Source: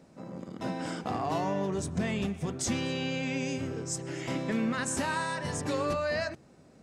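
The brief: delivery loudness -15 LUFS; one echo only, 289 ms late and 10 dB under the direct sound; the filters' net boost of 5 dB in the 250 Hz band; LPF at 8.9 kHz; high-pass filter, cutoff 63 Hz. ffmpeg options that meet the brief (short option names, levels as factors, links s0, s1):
-af "highpass=63,lowpass=8900,equalizer=f=250:t=o:g=6,aecho=1:1:289:0.316,volume=5.31"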